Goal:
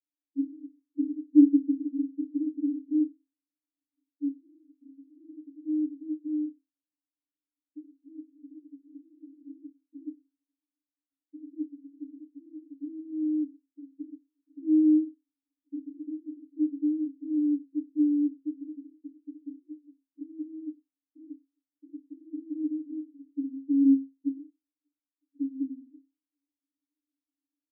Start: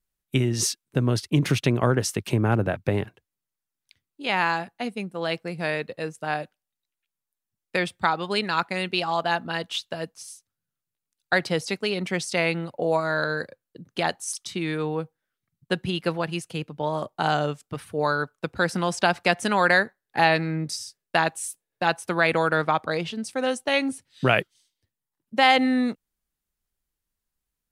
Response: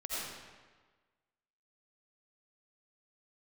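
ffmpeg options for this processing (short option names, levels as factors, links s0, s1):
-af "dynaudnorm=f=170:g=5:m=3.76,asuperpass=centerf=290:order=12:qfactor=7.2,aecho=1:1:89:0.0794,volume=1.68"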